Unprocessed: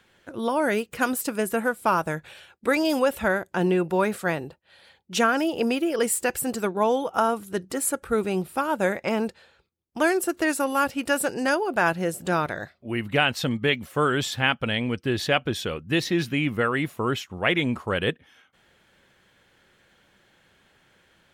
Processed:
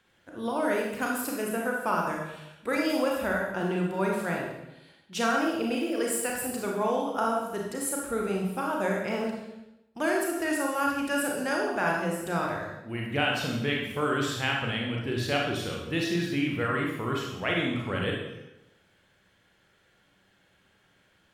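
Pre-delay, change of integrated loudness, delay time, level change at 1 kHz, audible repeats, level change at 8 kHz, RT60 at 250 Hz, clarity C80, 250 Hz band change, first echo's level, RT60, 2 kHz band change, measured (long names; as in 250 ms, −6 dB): 29 ms, −4.0 dB, no echo audible, −4.0 dB, no echo audible, −4.5 dB, 1.0 s, 5.0 dB, −3.5 dB, no echo audible, 0.90 s, −4.0 dB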